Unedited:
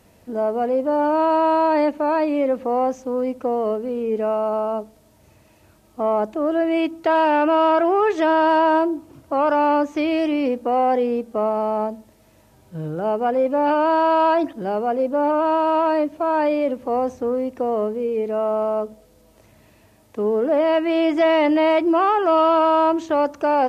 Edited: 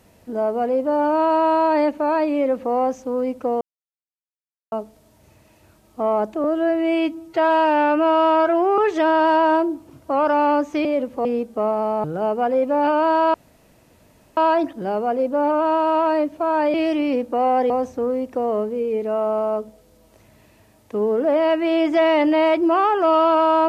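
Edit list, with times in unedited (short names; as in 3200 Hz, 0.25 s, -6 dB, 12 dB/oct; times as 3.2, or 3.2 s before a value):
3.61–4.72 mute
6.44–8 stretch 1.5×
10.07–11.03 swap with 16.54–16.94
11.82–12.87 cut
14.17 insert room tone 1.03 s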